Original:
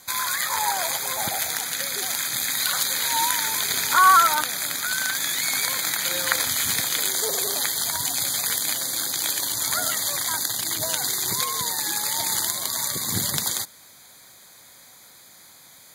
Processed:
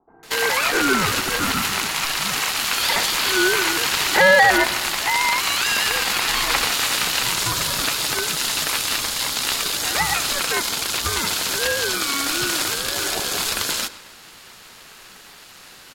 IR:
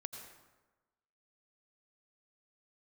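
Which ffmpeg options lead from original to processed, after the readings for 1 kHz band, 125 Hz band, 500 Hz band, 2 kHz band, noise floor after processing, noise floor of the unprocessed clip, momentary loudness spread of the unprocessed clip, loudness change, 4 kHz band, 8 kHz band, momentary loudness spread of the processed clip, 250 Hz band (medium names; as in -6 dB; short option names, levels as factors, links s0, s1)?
+1.0 dB, +5.0 dB, +12.0 dB, +8.0 dB, -45 dBFS, -49 dBFS, 4 LU, +3.0 dB, +5.5 dB, -0.5 dB, 5 LU, +11.0 dB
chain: -filter_complex "[0:a]acrossover=split=350[s0][s1];[s1]adelay=230[s2];[s0][s2]amix=inputs=2:normalize=0,asplit=2[s3][s4];[s4]highpass=f=720:p=1,volume=7.08,asoftclip=type=tanh:threshold=0.944[s5];[s3][s5]amix=inputs=2:normalize=0,lowpass=f=3500:p=1,volume=0.501,acontrast=88,asplit=2[s6][s7];[1:a]atrim=start_sample=2205,lowpass=5800[s8];[s7][s8]afir=irnorm=-1:irlink=0,volume=0.562[s9];[s6][s9]amix=inputs=2:normalize=0,aeval=exprs='val(0)*sin(2*PI*560*n/s)':c=same,volume=0.447"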